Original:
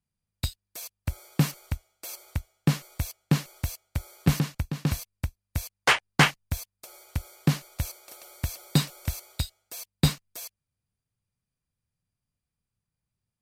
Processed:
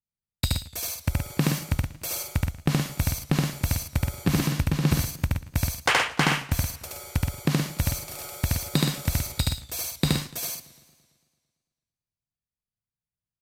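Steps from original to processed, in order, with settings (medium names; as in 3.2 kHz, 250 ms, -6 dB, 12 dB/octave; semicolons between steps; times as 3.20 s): gate with hold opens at -44 dBFS; in parallel at +1 dB: peak limiter -18 dBFS, peak gain reduction 9.5 dB; on the sum: compression, threshold -20 dBFS, peak gain reduction 9 dB; on a send: loudspeakers at several distances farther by 25 m -1 dB, 42 m -6 dB; on the sum: modulated delay 112 ms, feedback 64%, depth 114 cents, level -19 dB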